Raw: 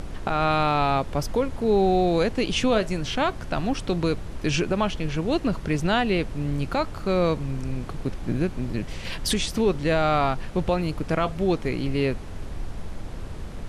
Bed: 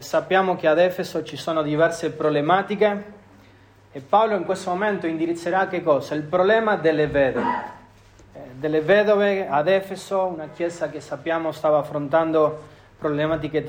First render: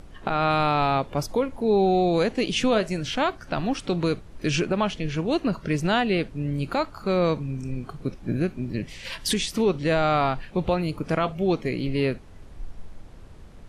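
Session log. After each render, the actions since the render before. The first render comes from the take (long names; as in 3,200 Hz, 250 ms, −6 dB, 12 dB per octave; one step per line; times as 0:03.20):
noise reduction from a noise print 11 dB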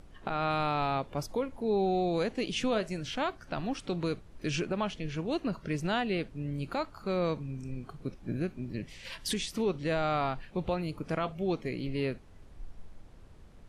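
level −8 dB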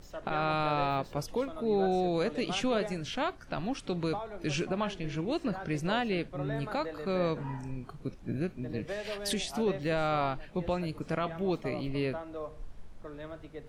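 mix in bed −21.5 dB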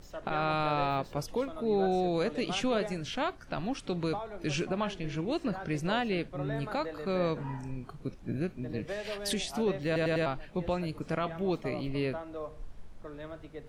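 0:09.86: stutter in place 0.10 s, 4 plays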